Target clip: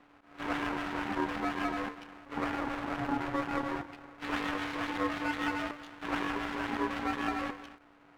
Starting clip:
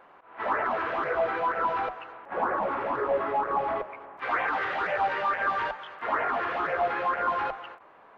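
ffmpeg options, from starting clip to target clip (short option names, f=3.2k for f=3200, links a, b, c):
-af "aeval=exprs='max(val(0),0)':c=same,aeval=exprs='val(0)*sin(2*PI*290*n/s)':c=same"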